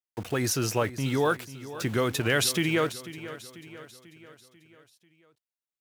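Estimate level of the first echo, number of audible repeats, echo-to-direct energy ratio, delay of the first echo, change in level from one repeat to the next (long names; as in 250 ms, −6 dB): −15.0 dB, 4, −13.5 dB, 492 ms, −5.5 dB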